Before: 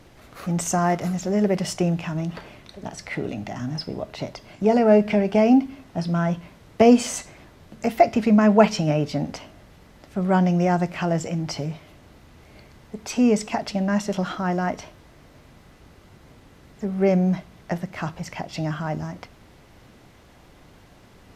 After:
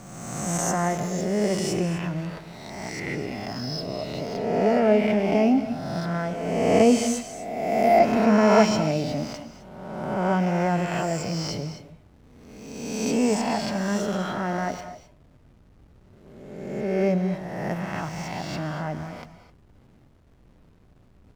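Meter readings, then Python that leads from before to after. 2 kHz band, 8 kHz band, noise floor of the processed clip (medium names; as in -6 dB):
+0.5 dB, +1.0 dB, -55 dBFS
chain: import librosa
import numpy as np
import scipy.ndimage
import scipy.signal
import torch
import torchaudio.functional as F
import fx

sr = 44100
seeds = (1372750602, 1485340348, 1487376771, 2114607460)

y = fx.spec_swells(x, sr, rise_s=1.65)
y = fx.backlash(y, sr, play_db=-39.0)
y = fx.rev_gated(y, sr, seeds[0], gate_ms=280, shape='rising', drr_db=11.0)
y = y * 10.0 ** (-5.5 / 20.0)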